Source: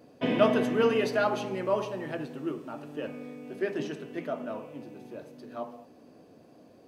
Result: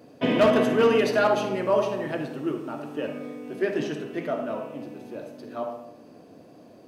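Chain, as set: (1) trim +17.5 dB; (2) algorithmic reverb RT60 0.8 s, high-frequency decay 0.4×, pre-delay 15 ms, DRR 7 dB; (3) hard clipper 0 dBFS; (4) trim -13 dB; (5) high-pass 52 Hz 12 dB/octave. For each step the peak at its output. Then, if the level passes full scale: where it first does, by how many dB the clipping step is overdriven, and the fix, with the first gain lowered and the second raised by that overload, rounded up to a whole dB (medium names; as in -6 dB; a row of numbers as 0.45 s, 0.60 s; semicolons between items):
+8.0 dBFS, +8.0 dBFS, 0.0 dBFS, -13.0 dBFS, -10.5 dBFS; step 1, 8.0 dB; step 1 +9.5 dB, step 4 -5 dB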